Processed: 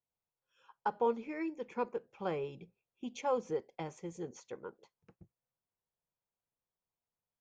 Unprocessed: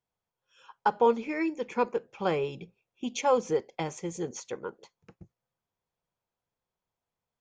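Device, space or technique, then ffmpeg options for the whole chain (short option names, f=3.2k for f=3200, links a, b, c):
behind a face mask: -af "highshelf=f=2.7k:g=-7,volume=-8dB"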